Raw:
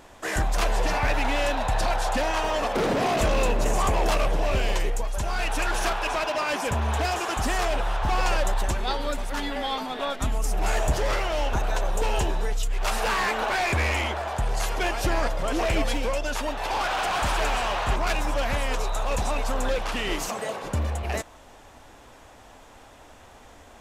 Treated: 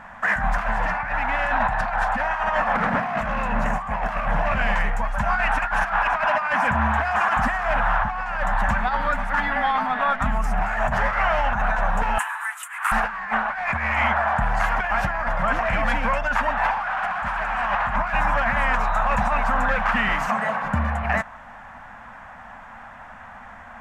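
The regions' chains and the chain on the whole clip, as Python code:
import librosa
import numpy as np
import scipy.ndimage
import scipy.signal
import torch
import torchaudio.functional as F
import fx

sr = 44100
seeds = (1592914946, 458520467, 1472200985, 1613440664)

y = fx.chain(x, sr, fx.steep_highpass(hz=1000.0, slope=36),
    fx.high_shelf_res(hz=7000.0, db=12.0, q=3.0), at=(12.18, 12.92))
y = fx.curve_eq(y, sr, hz=(100.0, 220.0, 350.0, 730.0, 1700.0, 3800.0, 9900.0), db=(0, 9, -18, 7, 13, -10, -14))
y = fx.over_compress(y, sr, threshold_db=-21.0, ratio=-0.5)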